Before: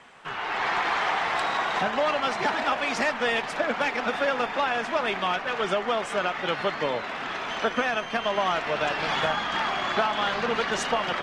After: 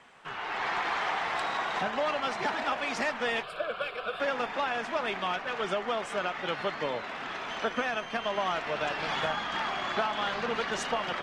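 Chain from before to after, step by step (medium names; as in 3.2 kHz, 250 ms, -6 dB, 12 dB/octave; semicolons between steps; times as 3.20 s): 3.43–4.20 s: static phaser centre 1.3 kHz, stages 8; trim -5 dB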